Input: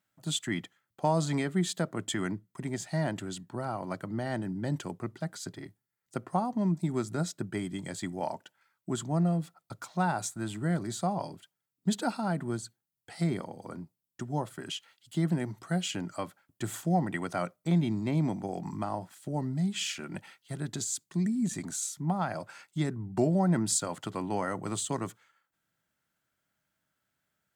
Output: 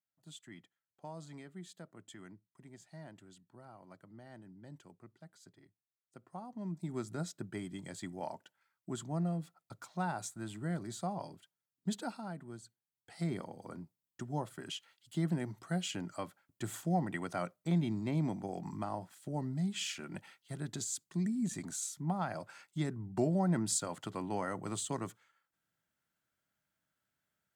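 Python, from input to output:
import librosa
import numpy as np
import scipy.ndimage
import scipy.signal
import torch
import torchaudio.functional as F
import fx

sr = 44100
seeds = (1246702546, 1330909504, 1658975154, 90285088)

y = fx.gain(x, sr, db=fx.line((6.18, -20.0), (7.0, -7.5), (11.92, -7.5), (12.47, -15.0), (13.42, -5.0)))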